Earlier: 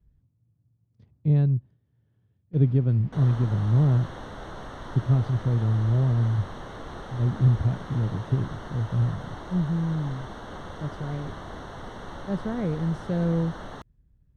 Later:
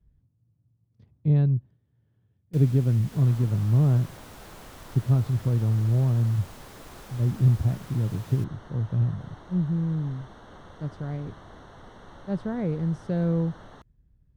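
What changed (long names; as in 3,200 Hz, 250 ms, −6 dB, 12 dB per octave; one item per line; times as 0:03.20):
first sound: remove head-to-tape spacing loss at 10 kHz 43 dB
second sound −8.5 dB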